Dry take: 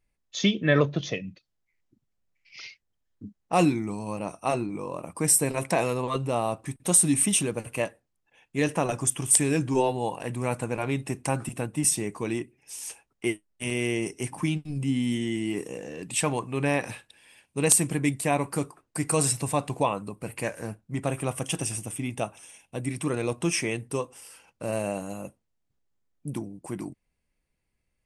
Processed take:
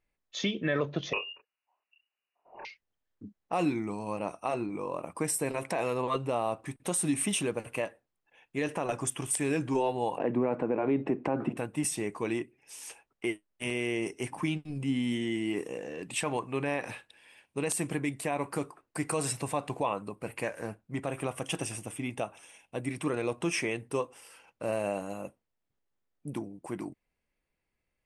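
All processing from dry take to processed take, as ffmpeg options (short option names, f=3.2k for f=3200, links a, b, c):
-filter_complex "[0:a]asettb=1/sr,asplit=3[a][b][c];[a]atrim=end=1.134[d];[b]atrim=start=1.13:end=2.65,asetpts=PTS-STARTPTS,afade=t=in:d=0.004:c=qsin,afade=t=out:st=1.516:d=0.004:c=qsin,highpass=f=160:p=1,asplit=2[e][f];[f]adelay=28,volume=-2dB[g];[e][g]amix=inputs=2:normalize=0,atrim=end_sample=67032,lowpass=f=2.6k:t=q:w=0.5098,lowpass=f=2.6k:t=q:w=0.6013,lowpass=f=2.6k:t=q:w=0.9,lowpass=f=2.6k:t=q:w=2.563,afreqshift=-3000[h];[c]atrim=start=2.646[i];[d][h]acrossfade=d=0.004:c1=hsin:c2=qsin[j];[j][i]acrossfade=d=0.004:c1=qsin:c2=hsin,asettb=1/sr,asplit=3[k][l][m];[k]atrim=end=10.184[n];[l]atrim=start=10.18:end=11.57,asetpts=PTS-STARTPTS,afade=t=in:d=0.004:c=qsin,afade=t=out:st=1.386:d=0.004:c=qsin,highpass=150,lowpass=2.5k,equalizer=f=300:w=0.39:g=14[o];[m]atrim=start=11.566[p];[n][o]acrossfade=d=0.004:c1=hsin:c2=qsin[q];[q][p]acrossfade=d=0.004:c1=qsin:c2=hsin,bass=f=250:g=-7,treble=f=4k:g=-8,alimiter=limit=-19dB:level=0:latency=1:release=111"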